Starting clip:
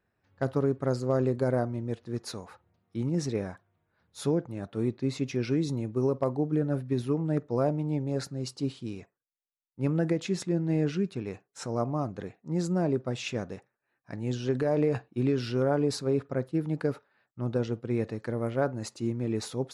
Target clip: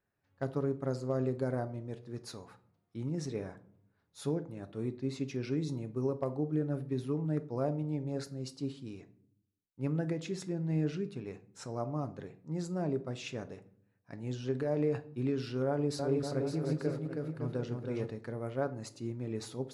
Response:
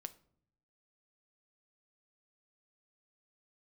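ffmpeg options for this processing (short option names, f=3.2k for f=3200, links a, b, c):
-filter_complex "[0:a]asettb=1/sr,asplit=3[a][b][c];[a]atrim=end=15.674[d];[b]atrim=start=15.67:end=18.1,asetpts=PTS-STARTPTS,afade=t=in:d=0.004:c=qsin,afade=t=out:st=2.426:d=0.004:c=qsin,aecho=1:1:320|560|740|875|976.2:0.631|0.398|0.251|0.158|0.1,atrim=end_sample=107163[e];[c]atrim=start=18.096[f];[d][e]acrossfade=d=0.004:c1=hsin:c2=qsin[g];[g][f]acrossfade=d=0.004:c1=qsin:c2=hsin[h];[1:a]atrim=start_sample=2205,asetrate=41013,aresample=44100[i];[h][i]afir=irnorm=-1:irlink=0,volume=-3dB"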